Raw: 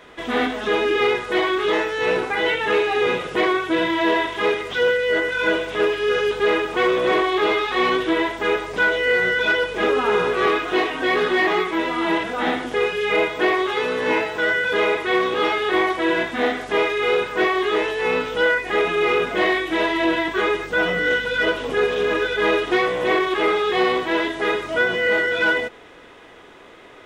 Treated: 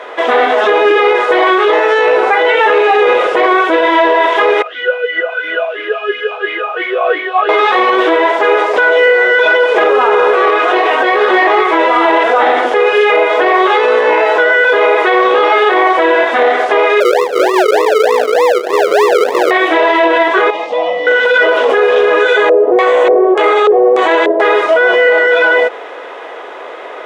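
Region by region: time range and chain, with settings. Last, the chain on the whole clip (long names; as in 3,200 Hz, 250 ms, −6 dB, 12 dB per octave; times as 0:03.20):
0:04.62–0:07.49: low shelf with overshoot 610 Hz −8 dB, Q 1.5 + double-tracking delay 38 ms −3.5 dB + formant filter swept between two vowels a-i 2.9 Hz
0:10.50–0:11.28: high-pass filter 240 Hz + downward compressor 2.5 to 1, threshold −23 dBFS
0:17.00–0:19.51: Butterworth low-pass 590 Hz 72 dB per octave + sample-and-hold swept by an LFO 40×, swing 60% 3.3 Hz
0:20.50–0:21.07: low-pass filter 5,100 Hz + phaser with its sweep stopped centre 400 Hz, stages 6 + downward compressor 3 to 1, threshold −31 dBFS
0:22.20–0:24.40: notch filter 5,200 Hz, Q 6.9 + auto-filter low-pass square 1.7 Hz 510–7,800 Hz
whole clip: high-pass filter 530 Hz 24 dB per octave; spectral tilt −4.5 dB per octave; boost into a limiter +20.5 dB; level −1 dB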